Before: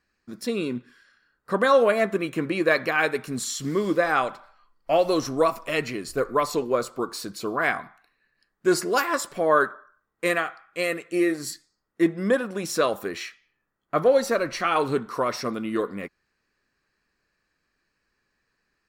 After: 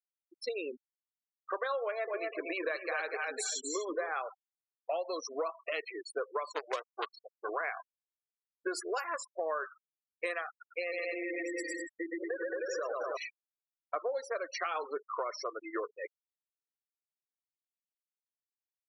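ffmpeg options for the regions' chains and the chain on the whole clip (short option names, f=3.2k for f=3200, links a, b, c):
-filter_complex "[0:a]asettb=1/sr,asplit=3[a][b][c];[a]atrim=end=1.834[d];[b]atrim=start=1.83:end=4.09,asetpts=PTS-STARTPTS,afade=t=in:d=0.004:c=qsin,afade=t=out:st=2.256:d=0.004:c=qsin,aeval=exprs='val(0)+0.5*0.0224*sgn(val(0))':c=same,aecho=1:1:243|486|729:0.562|0.124|0.0272,atrim=end_sample=99666[e];[c]atrim=start=4.086[f];[d][e]acrossfade=d=0.004:c1=hsin:c2=qsin[g];[g][f]acrossfade=d=0.004:c1=qsin:c2=hsin,asettb=1/sr,asplit=3[h][i][j];[h]atrim=end=6.524[k];[i]atrim=start=6.52:end=7.49,asetpts=PTS-STARTPTS,afade=t=in:d=0.004:c=qsin,afade=t=out:st=0.966:d=0.004:c=qsin,equalizer=f=1.1k:t=o:w=0.25:g=6.5,acrusher=bits=4:dc=4:mix=0:aa=0.000001[l];[j]atrim=start=7.486[m];[k][l]acrossfade=d=0.004:c1=hsin:c2=qsin[n];[n][m]acrossfade=d=0.004:c1=qsin:c2=hsin,asettb=1/sr,asplit=3[o][p][q];[o]atrim=end=10.494[r];[p]atrim=start=10.49:end=13.17,asetpts=PTS-STARTPTS,afade=t=in:d=0.004:c=qsin,afade=t=out:st=2.676:d=0.004:c=qsin,aecho=1:1:120|222|308.7|382.4|445|498.3|543.5|582:0.794|0.631|0.501|0.398|0.316|0.251|0.2|0.158,atrim=end_sample=118188,acompressor=threshold=-23dB:ratio=10:attack=3.2:release=140:knee=1:detection=peak[s];[q]atrim=start=13.166[t];[r][s]acrossfade=d=0.004:c1=hsin:c2=qsin[u];[u][t]acrossfade=d=0.004:c1=qsin:c2=hsin,highpass=f=440:w=0.5412,highpass=f=440:w=1.3066,afftfilt=real='re*gte(hypot(re,im),0.0447)':imag='im*gte(hypot(re,im),0.0447)':win_size=1024:overlap=0.75,acompressor=threshold=-33dB:ratio=6"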